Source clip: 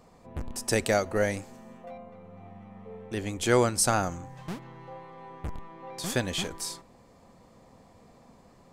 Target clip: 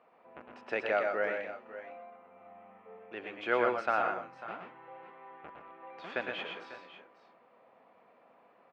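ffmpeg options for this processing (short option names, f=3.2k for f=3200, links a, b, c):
-af "highpass=430,equalizer=f=650:t=q:w=4:g=3,equalizer=f=1.4k:t=q:w=4:g=6,equalizer=f=2.6k:t=q:w=4:g=5,lowpass=f=2.8k:w=0.5412,lowpass=f=2.8k:w=1.3066,aecho=1:1:106|122|163|546|573:0.335|0.562|0.141|0.178|0.112,volume=-6dB"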